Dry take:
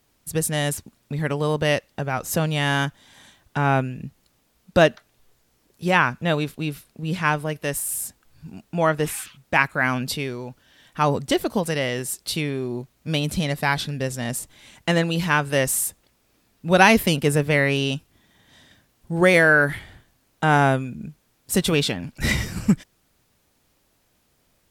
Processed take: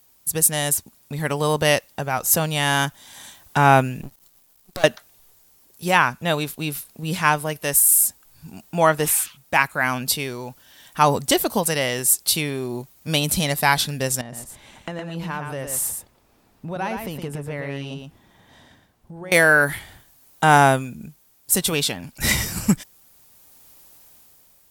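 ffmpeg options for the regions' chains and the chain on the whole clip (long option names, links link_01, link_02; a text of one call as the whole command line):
ffmpeg -i in.wav -filter_complex "[0:a]asettb=1/sr,asplit=3[link_01][link_02][link_03];[link_01]atrim=end=4.014[link_04];[link_02]atrim=start=4.01:end=4.84,asetpts=PTS-STARTPTS,afade=type=in:duration=0.004:curve=qsin,afade=type=out:start_time=0.826:duration=0.004:curve=qsin,aeval=exprs='max(val(0),0)':channel_layout=same,acompressor=threshold=-29dB:ratio=5:attack=3.2:release=140:knee=1:detection=peak[link_05];[link_03]atrim=start=4.836[link_06];[link_04][link_05]acrossfade=duration=0.004:curve1=hsin:curve2=qsin[link_07];[link_07][link_06]acrossfade=duration=0.004:curve1=qsin:curve2=hsin,asettb=1/sr,asplit=3[link_08][link_09][link_10];[link_08]atrim=end=14.214[link_11];[link_09]atrim=start=14.21:end=19.32,asetpts=PTS-STARTPTS,afade=type=in:duration=0.004:curve=qsin,afade=type=out:start_time=5.106:duration=0.004:curve=qsin,lowpass=frequency=1100:poles=1,acompressor=threshold=-35dB:ratio=4:attack=3.2:release=140:knee=1:detection=peak,aecho=1:1:115:0.531,atrim=end_sample=225351[link_12];[link_10]atrim=start=19.316[link_13];[link_11][link_12]acrossfade=duration=0.004:curve1=hsin:curve2=qsin[link_14];[link_14][link_13]acrossfade=duration=0.004:curve1=qsin:curve2=hsin,aemphasis=mode=production:type=75kf,dynaudnorm=framelen=140:gausssize=9:maxgain=7dB,equalizer=frequency=870:width_type=o:width=1.1:gain=5.5,volume=-3dB" out.wav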